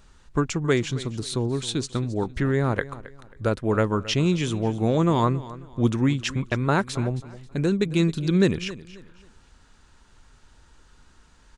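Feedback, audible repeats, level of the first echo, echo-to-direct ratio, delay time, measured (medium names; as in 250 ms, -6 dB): 30%, 2, -17.0 dB, -16.5 dB, 269 ms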